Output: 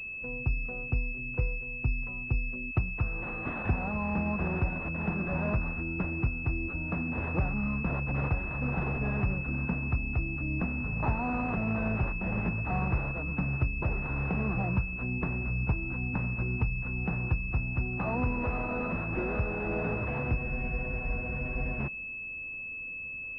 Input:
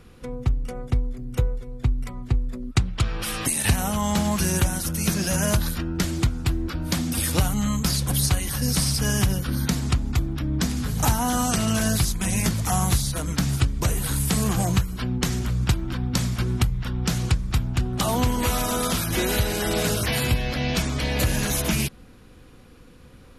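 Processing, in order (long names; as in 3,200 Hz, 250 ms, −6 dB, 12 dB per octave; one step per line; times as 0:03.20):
frozen spectrum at 0:20.38, 1.42 s
switching amplifier with a slow clock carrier 2,600 Hz
level −7.5 dB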